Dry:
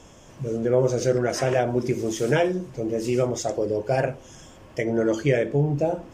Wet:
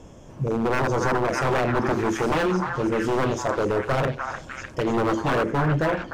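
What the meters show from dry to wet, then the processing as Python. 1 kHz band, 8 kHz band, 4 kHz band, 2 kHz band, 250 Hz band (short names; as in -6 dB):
+7.0 dB, -4.0 dB, +1.5 dB, +5.0 dB, +1.0 dB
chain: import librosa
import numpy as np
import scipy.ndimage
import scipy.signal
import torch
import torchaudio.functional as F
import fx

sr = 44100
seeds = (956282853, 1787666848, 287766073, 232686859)

y = fx.tilt_shelf(x, sr, db=5.5, hz=970.0)
y = 10.0 ** (-17.0 / 20.0) * (np.abs((y / 10.0 ** (-17.0 / 20.0) + 3.0) % 4.0 - 2.0) - 1.0)
y = fx.echo_stepped(y, sr, ms=301, hz=1200.0, octaves=0.7, feedback_pct=70, wet_db=-0.5)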